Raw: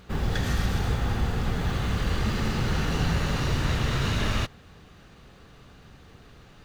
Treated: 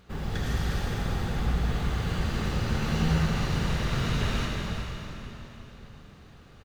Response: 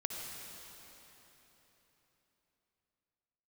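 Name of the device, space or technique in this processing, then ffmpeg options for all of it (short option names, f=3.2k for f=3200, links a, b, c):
cave: -filter_complex "[0:a]aecho=1:1:362:0.316[a];[1:a]atrim=start_sample=2205[b];[a][b]afir=irnorm=-1:irlink=0,asettb=1/sr,asplit=3[c][d][e];[c]atrim=end=2.814[f];[d]atrim=start=2.81:end=3.26,asetpts=PTS-STARTPTS,afade=t=in:d=0.004:c=qsin,afade=t=out:st=0.446:d=0.004:c=qsin,asplit=2[g][h];[h]adelay=13,volume=-5.5dB[i];[g][i]amix=inputs=2:normalize=0,atrim=end_sample=19845[j];[e]atrim=start=3.256[k];[f][j]acrossfade=d=0.004:c1=hsin:c2=qsin[l];[l][k]acrossfade=d=0.004:c1=qsin:c2=hsin,volume=-4.5dB"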